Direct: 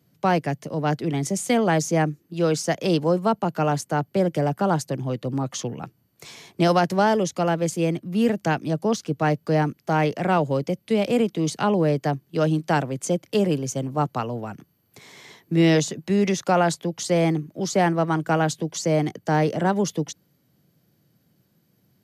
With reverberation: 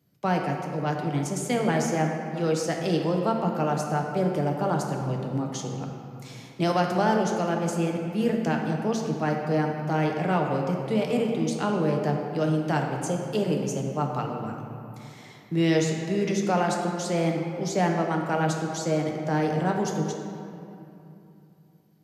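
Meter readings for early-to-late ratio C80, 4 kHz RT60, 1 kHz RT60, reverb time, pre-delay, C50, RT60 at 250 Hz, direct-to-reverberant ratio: 4.0 dB, 1.6 s, 2.8 s, 2.8 s, 7 ms, 2.5 dB, 3.4 s, 1.0 dB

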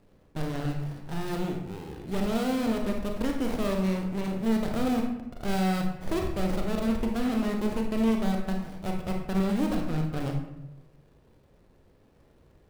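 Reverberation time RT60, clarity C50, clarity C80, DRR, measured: 0.90 s, 4.0 dB, 7.5 dB, 1.0 dB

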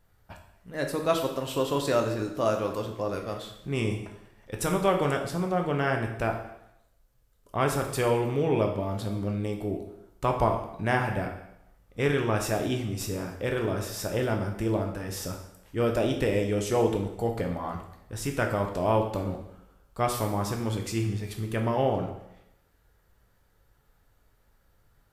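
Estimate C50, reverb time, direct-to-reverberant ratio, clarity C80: 7.0 dB, 0.85 s, 2.5 dB, 9.5 dB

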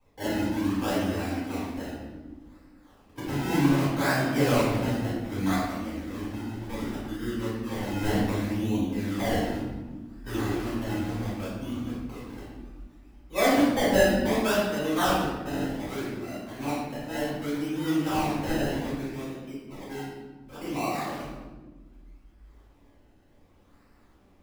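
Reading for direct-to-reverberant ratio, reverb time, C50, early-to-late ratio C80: −11.5 dB, 1.4 s, −0.5 dB, 2.5 dB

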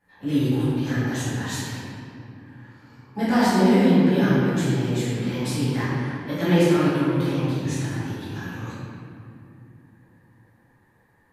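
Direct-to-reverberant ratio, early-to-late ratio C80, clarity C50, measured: −14.0 dB, −2.0 dB, −4.5 dB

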